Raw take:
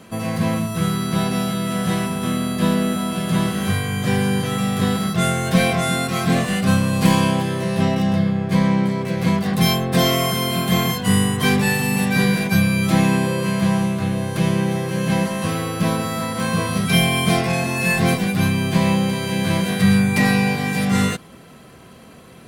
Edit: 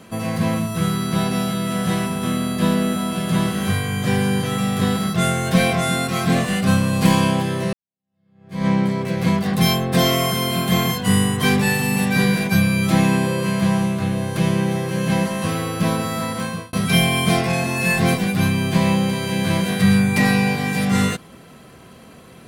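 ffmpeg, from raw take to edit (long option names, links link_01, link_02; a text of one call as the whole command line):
ffmpeg -i in.wav -filter_complex "[0:a]asplit=3[link_01][link_02][link_03];[link_01]atrim=end=7.73,asetpts=PTS-STARTPTS,afade=type=out:start_time=7.726:duration=0.004:curve=hsin[link_04];[link_02]atrim=start=7.73:end=16.73,asetpts=PTS-STARTPTS,afade=type=in:duration=0.94:curve=exp,afade=type=out:start_time=8.58:duration=0.42[link_05];[link_03]atrim=start=16.73,asetpts=PTS-STARTPTS,afade=type=in:duration=0.004:curve=hsin[link_06];[link_04][link_05][link_06]concat=n=3:v=0:a=1" out.wav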